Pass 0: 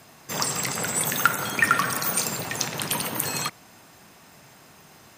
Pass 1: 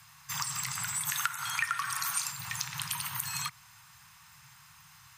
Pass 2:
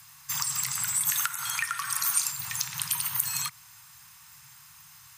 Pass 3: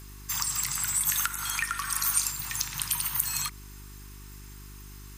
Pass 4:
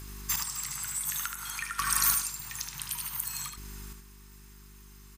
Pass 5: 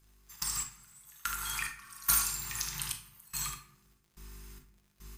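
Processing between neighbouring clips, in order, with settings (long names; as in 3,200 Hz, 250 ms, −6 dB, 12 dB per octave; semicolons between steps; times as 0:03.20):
Chebyshev band-stop filter 140–1,000 Hz, order 3; gain on a spectral selection 0:01.09–0:02.32, 600–12,000 Hz +8 dB; downward compressor 4 to 1, threshold −28 dBFS, peak gain reduction 18 dB; level −3 dB
high-shelf EQ 5,600 Hz +11 dB; level −1 dB
hum with harmonics 50 Hz, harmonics 8, −46 dBFS −7 dB per octave
square-wave tremolo 0.56 Hz, depth 65%, duty 20%; on a send: single-tap delay 75 ms −6 dB; on the sum: level +2 dB
gate pattern "..x...xx..xxxx" 72 BPM −24 dB; surface crackle 86 per second −55 dBFS; on a send at −2.5 dB: convolution reverb RT60 0.65 s, pre-delay 6 ms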